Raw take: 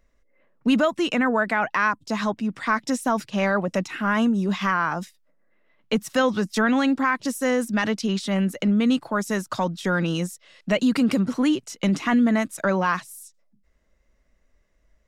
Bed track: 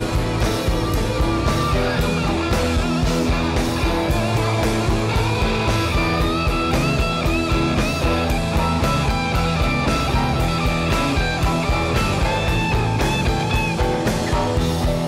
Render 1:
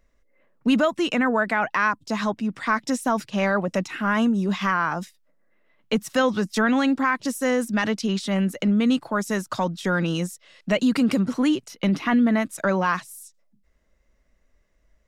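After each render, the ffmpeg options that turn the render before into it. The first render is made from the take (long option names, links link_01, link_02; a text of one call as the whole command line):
ffmpeg -i in.wav -filter_complex "[0:a]asettb=1/sr,asplit=3[link_01][link_02][link_03];[link_01]atrim=end=11.684[link_04];[link_02]atrim=start=11.68:end=12.46,asetpts=PTS-STARTPTS,afade=type=in:duration=0.004:curve=qsin,afade=type=out:start_time=0.776:duration=0.004:curve=qsin,equalizer=frequency=7500:width=2.5:gain=-14.5[link_05];[link_03]atrim=start=12.456[link_06];[link_04][link_05]acrossfade=duration=0.004:curve1=hsin:curve2=qsin[link_07];[link_07][link_06]acrossfade=duration=0.004:curve1=qsin:curve2=hsin" out.wav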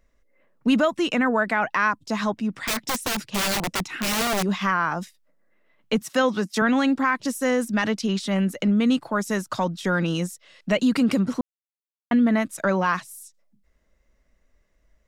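ffmpeg -i in.wav -filter_complex "[0:a]asettb=1/sr,asplit=3[link_01][link_02][link_03];[link_01]atrim=end=2.604[link_04];[link_02]atrim=start=2.6:end=4.43,asetpts=PTS-STARTPTS,afade=type=in:duration=0.004:curve=qsin,afade=type=out:start_time=1.826:duration=0.004:curve=qsin,aeval=exprs='(mod(9.44*val(0)+1,2)-1)/9.44':channel_layout=same[link_05];[link_03]atrim=start=4.426[link_06];[link_04][link_05]acrossfade=duration=0.004:curve1=hsin:curve2=qsin[link_07];[link_07][link_06]acrossfade=duration=0.004:curve1=qsin:curve2=hsin,asettb=1/sr,asplit=3[link_08][link_09][link_10];[link_08]atrim=end=6.014[link_11];[link_09]atrim=start=6.01:end=6.62,asetpts=PTS-STARTPTS,afade=type=in:duration=0.004:curve=qsin,afade=type=out:start_time=0.606:duration=0.004:curve=qsin,highpass=170[link_12];[link_10]atrim=start=6.616[link_13];[link_11][link_12]acrossfade=duration=0.004:curve1=hsin:curve2=qsin[link_14];[link_14][link_13]acrossfade=duration=0.004:curve1=qsin:curve2=hsin,asplit=3[link_15][link_16][link_17];[link_15]atrim=end=11.41,asetpts=PTS-STARTPTS,afade=type=out:start_time=11.406:duration=0.004:curve=hsin[link_18];[link_16]atrim=start=11.41:end=12.11,asetpts=PTS-STARTPTS,volume=0[link_19];[link_17]atrim=start=12.11,asetpts=PTS-STARTPTS,afade=type=in:duration=0.004:curve=hsin[link_20];[link_18][link_19][link_20]concat=n=3:v=0:a=1" out.wav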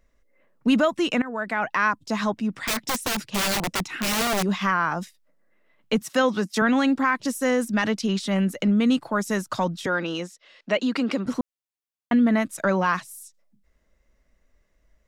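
ffmpeg -i in.wav -filter_complex "[0:a]asettb=1/sr,asplit=3[link_01][link_02][link_03];[link_01]atrim=end=9.864[link_04];[link_02]atrim=start=9.86:end=11.26,asetpts=PTS-STARTPTS,afade=type=in:duration=0.004:curve=qsin,afade=type=out:start_time=1.396:duration=0.004:curve=qsin,acrossover=split=240 6200:gain=0.1 1 0.141[link_05][link_06][link_07];[link_05][link_06][link_07]amix=inputs=3:normalize=0[link_08];[link_03]atrim=start=11.256[link_09];[link_04][link_08]acrossfade=duration=0.004:curve1=hsin:curve2=qsin[link_10];[link_10][link_09]acrossfade=duration=0.004:curve1=qsin:curve2=hsin,asplit=2[link_11][link_12];[link_11]atrim=end=1.22,asetpts=PTS-STARTPTS,afade=type=out:start_time=1.216:duration=0.004:curve=hsin:silence=0.133352[link_13];[link_12]atrim=start=1.22,asetpts=PTS-STARTPTS,afade=type=in:duration=0.74:curve=qsin:silence=0.133352[link_14];[link_13][link_14]concat=n=2:v=0:a=1" out.wav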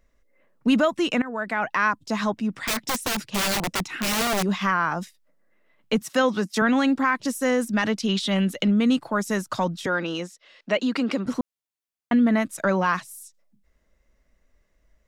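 ffmpeg -i in.wav -filter_complex "[0:a]asettb=1/sr,asplit=3[link_01][link_02][link_03];[link_01]atrim=end=8.064[link_04];[link_02]atrim=start=8.06:end=8.71,asetpts=PTS-STARTPTS,afade=type=in:duration=0.004:curve=qsin,afade=type=out:start_time=0.646:duration=0.004:curve=qsin,equalizer=frequency=3400:width=2:gain=9[link_05];[link_03]atrim=start=8.706[link_06];[link_04][link_05]acrossfade=duration=0.004:curve1=hsin:curve2=qsin[link_07];[link_07][link_06]acrossfade=duration=0.004:curve1=qsin:curve2=hsin" out.wav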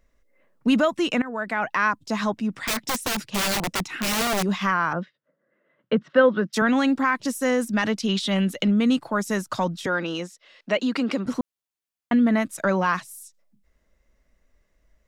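ffmpeg -i in.wav -filter_complex "[0:a]asettb=1/sr,asplit=3[link_01][link_02][link_03];[link_01]atrim=end=4.934[link_04];[link_02]atrim=start=4.93:end=6.53,asetpts=PTS-STARTPTS,afade=type=in:duration=0.004:curve=qsin,afade=type=out:start_time=1.596:duration=0.004:curve=qsin,highpass=110,equalizer=frequency=150:width_type=q:width=4:gain=5,equalizer=frequency=340:width_type=q:width=4:gain=3,equalizer=frequency=540:width_type=q:width=4:gain=7,equalizer=frequency=810:width_type=q:width=4:gain=-7,equalizer=frequency=1500:width_type=q:width=4:gain=5,equalizer=frequency=2400:width_type=q:width=4:gain=-8,lowpass=frequency=3000:width=0.5412,lowpass=frequency=3000:width=1.3066[link_05];[link_03]atrim=start=6.526[link_06];[link_04][link_05]acrossfade=duration=0.004:curve1=hsin:curve2=qsin[link_07];[link_07][link_06]acrossfade=duration=0.004:curve1=qsin:curve2=hsin" out.wav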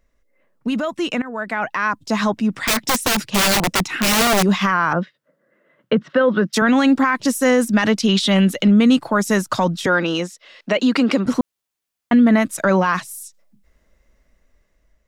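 ffmpeg -i in.wav -af "alimiter=limit=-15dB:level=0:latency=1:release=38,dynaudnorm=framelen=740:gausssize=5:maxgain=8dB" out.wav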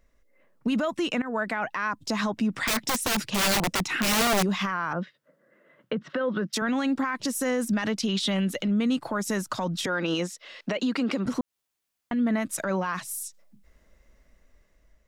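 ffmpeg -i in.wav -af "acompressor=threshold=-20dB:ratio=6,alimiter=limit=-18.5dB:level=0:latency=1:release=133" out.wav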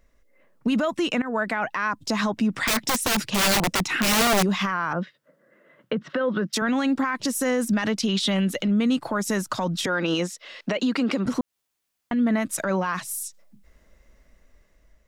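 ffmpeg -i in.wav -af "volume=3dB" out.wav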